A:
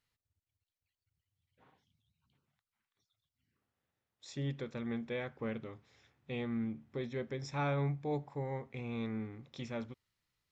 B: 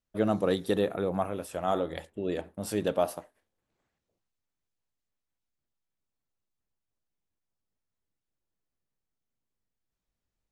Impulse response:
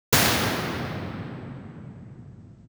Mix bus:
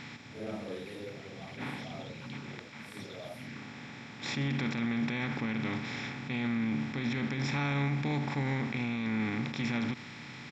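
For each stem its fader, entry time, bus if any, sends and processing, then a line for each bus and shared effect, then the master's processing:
0.0 dB, 0.00 s, no send, compressor on every frequency bin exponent 0.4; octave-band graphic EQ 125/250/500/1,000/2,000/4,000 Hz +4/+11/−8/+5/+11/+8 dB; level that may rise only so fast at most 180 dB per second
−6.5 dB, 0.25 s, no send, random phases in long frames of 200 ms; automatic ducking −11 dB, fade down 1.20 s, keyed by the first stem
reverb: not used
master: parametric band 1,300 Hz −3.5 dB 0.77 octaves; brickwall limiter −23.5 dBFS, peak gain reduction 10 dB

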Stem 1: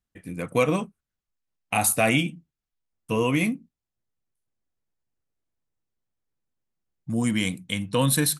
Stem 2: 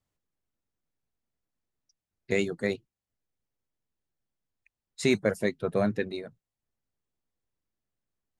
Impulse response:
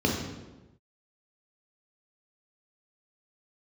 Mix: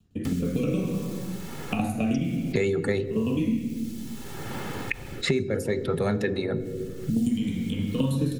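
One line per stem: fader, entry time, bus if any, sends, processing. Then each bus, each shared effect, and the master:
−13.0 dB, 0.00 s, send −4 dB, tremolo with a ramp in dB decaying 9.5 Hz, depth 20 dB
+1.5 dB, 0.25 s, send −24 dB, comb filter 2.3 ms, depth 49%; envelope flattener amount 50%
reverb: on, pre-delay 3 ms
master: rotating-speaker cabinet horn 0.6 Hz; multiband upward and downward compressor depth 100%

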